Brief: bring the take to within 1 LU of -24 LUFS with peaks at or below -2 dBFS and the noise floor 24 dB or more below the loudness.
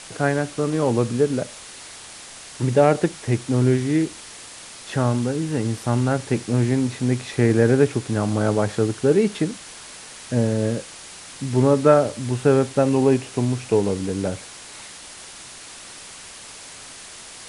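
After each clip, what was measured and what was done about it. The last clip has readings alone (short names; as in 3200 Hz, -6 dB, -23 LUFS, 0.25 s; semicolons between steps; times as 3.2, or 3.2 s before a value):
noise floor -40 dBFS; noise floor target -45 dBFS; loudness -21.0 LUFS; peak -2.5 dBFS; loudness target -24.0 LUFS
-> denoiser 6 dB, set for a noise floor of -40 dBFS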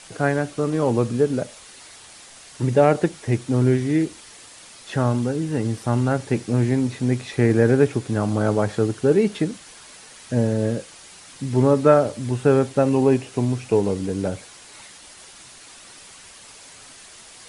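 noise floor -45 dBFS; loudness -21.0 LUFS; peak -2.5 dBFS; loudness target -24.0 LUFS
-> gain -3 dB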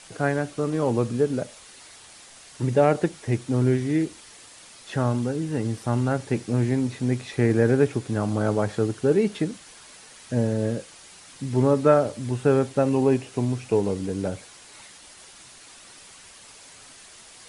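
loudness -24.0 LUFS; peak -5.5 dBFS; noise floor -48 dBFS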